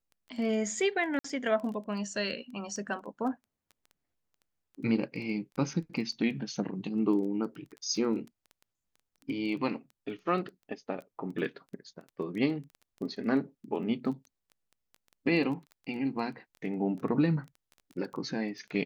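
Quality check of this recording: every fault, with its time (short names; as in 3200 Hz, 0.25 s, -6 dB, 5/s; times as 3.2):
crackle 11/s -39 dBFS
1.19–1.24 gap 54 ms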